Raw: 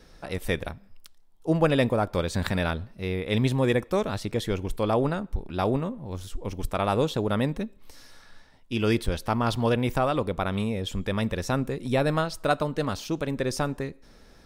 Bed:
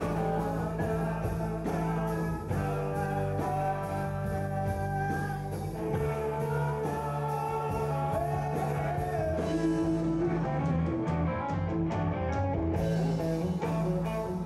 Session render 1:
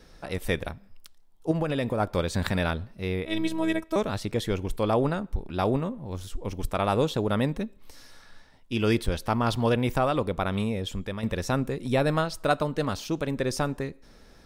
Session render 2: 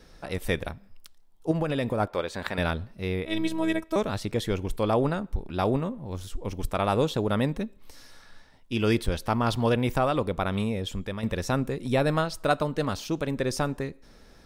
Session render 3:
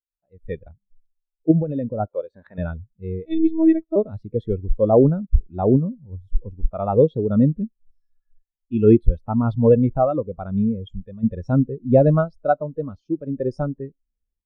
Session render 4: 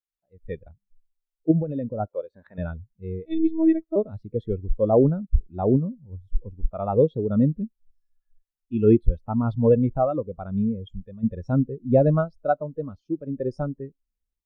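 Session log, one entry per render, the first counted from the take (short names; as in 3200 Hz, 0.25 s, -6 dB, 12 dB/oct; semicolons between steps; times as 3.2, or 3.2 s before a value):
1.51–2 compressor 10:1, threshold -22 dBFS; 3.25–3.96 robotiser 323 Hz; 10.64–11.23 fade out equal-power, to -9.5 dB
2.06–2.58 tone controls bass -14 dB, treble -8 dB
AGC gain up to 11.5 dB; spectral expander 2.5:1
gain -3.5 dB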